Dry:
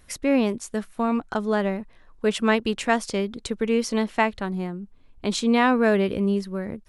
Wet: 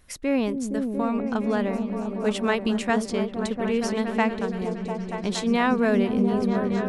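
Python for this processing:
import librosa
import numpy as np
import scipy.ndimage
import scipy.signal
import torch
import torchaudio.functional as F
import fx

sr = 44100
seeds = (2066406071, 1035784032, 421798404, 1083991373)

y = fx.echo_opening(x, sr, ms=233, hz=200, octaves=1, feedback_pct=70, wet_db=0)
y = y * 10.0 ** (-3.0 / 20.0)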